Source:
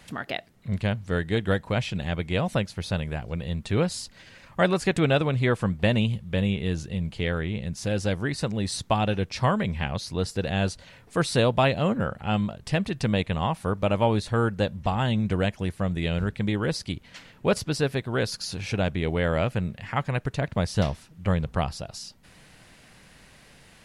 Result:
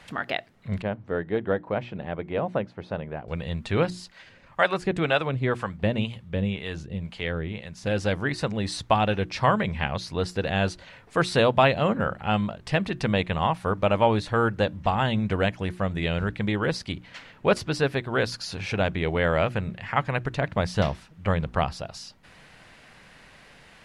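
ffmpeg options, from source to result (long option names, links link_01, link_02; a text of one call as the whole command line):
ffmpeg -i in.wav -filter_complex "[0:a]asettb=1/sr,asplit=3[link_01][link_02][link_03];[link_01]atrim=end=0.824[link_04];[link_02]atrim=start=0.82:end=3.28,asetpts=PTS-STARTPTS,afade=type=in:duration=0.004:curve=qsin,afade=type=out:start_time=2.456:duration=0.004:curve=qsin,bandpass=frequency=420:width_type=q:width=0.63[link_05];[link_03]atrim=start=3.276[link_06];[link_04][link_05]acrossfade=duration=0.004:curve1=hsin:curve2=qsin[link_07];[link_07][link_06]acrossfade=duration=0.004:curve1=qsin:curve2=hsin,asettb=1/sr,asplit=3[link_08][link_09][link_10];[link_08]atrim=end=3.904[link_11];[link_09]atrim=start=3.9:end=7.86,asetpts=PTS-STARTPTS,afade=type=in:duration=0.004:curve=qsin,afade=type=out:start_time=3.956:duration=0.004:curve=qsin,acrossover=split=540[link_12][link_13];[link_12]aeval=exprs='val(0)*(1-0.7/2+0.7/2*cos(2*PI*2*n/s))':channel_layout=same[link_14];[link_13]aeval=exprs='val(0)*(1-0.7/2-0.7/2*cos(2*PI*2*n/s))':channel_layout=same[link_15];[link_14][link_15]amix=inputs=2:normalize=0[link_16];[link_10]atrim=start=7.856[link_17];[link_11][link_16]acrossfade=duration=0.004:curve1=hsin:curve2=qsin[link_18];[link_18][link_17]acrossfade=duration=0.004:curve1=qsin:curve2=hsin,lowpass=frequency=1800:poles=1,tiltshelf=frequency=670:gain=-4.5,bandreject=frequency=60:width_type=h:width=6,bandreject=frequency=120:width_type=h:width=6,bandreject=frequency=180:width_type=h:width=6,bandreject=frequency=240:width_type=h:width=6,bandreject=frequency=300:width_type=h:width=6,bandreject=frequency=360:width_type=h:width=6,volume=3.5dB" out.wav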